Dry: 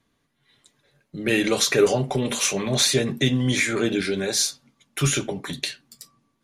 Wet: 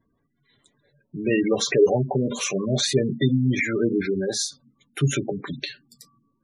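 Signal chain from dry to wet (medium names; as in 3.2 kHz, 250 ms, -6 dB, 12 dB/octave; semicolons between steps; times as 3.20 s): treble shelf 2.4 kHz -6.5 dB; spectral gate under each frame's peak -15 dB strong; wow and flutter 24 cents; trim +1.5 dB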